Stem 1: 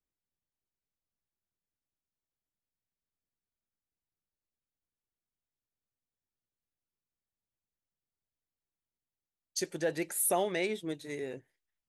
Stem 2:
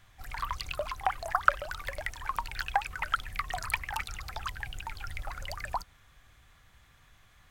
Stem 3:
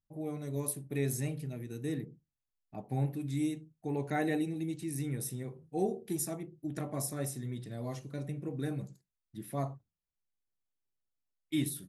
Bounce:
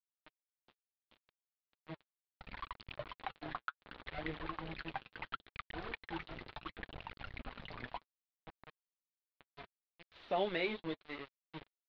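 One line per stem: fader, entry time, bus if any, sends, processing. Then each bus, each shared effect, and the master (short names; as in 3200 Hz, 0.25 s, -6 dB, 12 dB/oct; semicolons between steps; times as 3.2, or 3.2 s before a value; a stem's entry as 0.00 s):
-0.5 dB, 0.00 s, no send, high shelf 3000 Hz +6.5 dB; auto duck -21 dB, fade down 0.35 s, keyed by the third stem
+1.0 dB, 2.20 s, no send, compressor 3:1, threshold -40 dBFS, peak gain reduction 18.5 dB
-11.5 dB, 0.00 s, no send, ripple EQ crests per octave 1.9, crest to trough 16 dB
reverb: off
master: sample gate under -36.5 dBFS; flange 0.7 Hz, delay 0.3 ms, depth 7.9 ms, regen -39%; steep low-pass 4100 Hz 48 dB/oct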